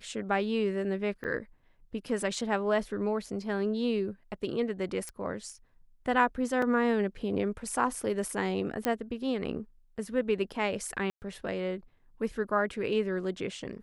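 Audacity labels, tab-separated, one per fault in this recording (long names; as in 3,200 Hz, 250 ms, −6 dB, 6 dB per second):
1.240000	1.250000	drop-out 7.4 ms
5.090000	5.090000	click −25 dBFS
6.620000	6.620000	drop-out 3.5 ms
8.850000	8.850000	click −12 dBFS
11.100000	11.220000	drop-out 119 ms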